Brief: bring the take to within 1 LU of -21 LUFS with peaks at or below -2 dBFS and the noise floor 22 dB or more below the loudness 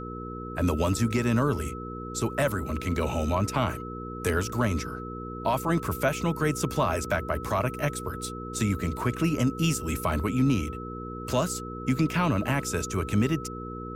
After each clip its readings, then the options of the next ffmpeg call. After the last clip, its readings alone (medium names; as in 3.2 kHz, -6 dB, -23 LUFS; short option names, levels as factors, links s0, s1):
hum 60 Hz; highest harmonic 480 Hz; hum level -35 dBFS; steady tone 1.3 kHz; tone level -39 dBFS; loudness -28.0 LUFS; peak level -13.0 dBFS; loudness target -21.0 LUFS
-> -af "bandreject=f=60:t=h:w=4,bandreject=f=120:t=h:w=4,bandreject=f=180:t=h:w=4,bandreject=f=240:t=h:w=4,bandreject=f=300:t=h:w=4,bandreject=f=360:t=h:w=4,bandreject=f=420:t=h:w=4,bandreject=f=480:t=h:w=4"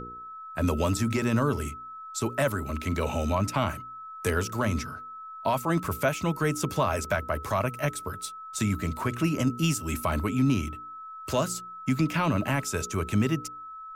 hum not found; steady tone 1.3 kHz; tone level -39 dBFS
-> -af "bandreject=f=1300:w=30"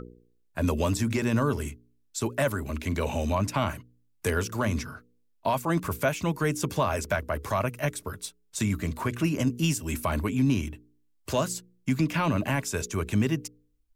steady tone not found; loudness -28.5 LUFS; peak level -14.0 dBFS; loudness target -21.0 LUFS
-> -af "volume=2.37"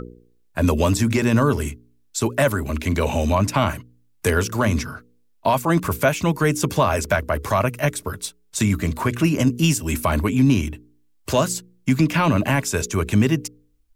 loudness -21.0 LUFS; peak level -6.5 dBFS; noise floor -59 dBFS